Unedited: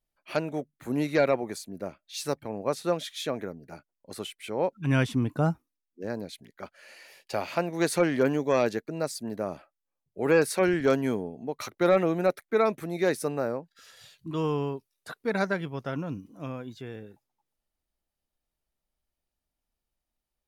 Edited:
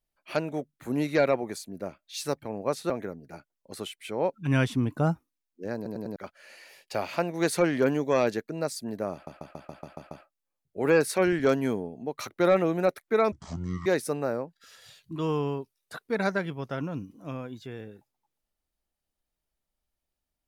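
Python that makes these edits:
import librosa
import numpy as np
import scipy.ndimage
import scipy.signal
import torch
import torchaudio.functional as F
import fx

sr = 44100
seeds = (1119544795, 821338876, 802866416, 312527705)

y = fx.edit(x, sr, fx.cut(start_s=2.9, length_s=0.39),
    fx.stutter_over(start_s=6.15, slice_s=0.1, count=4),
    fx.stutter(start_s=9.52, slice_s=0.14, count=8),
    fx.speed_span(start_s=12.73, length_s=0.28, speed=0.52), tone=tone)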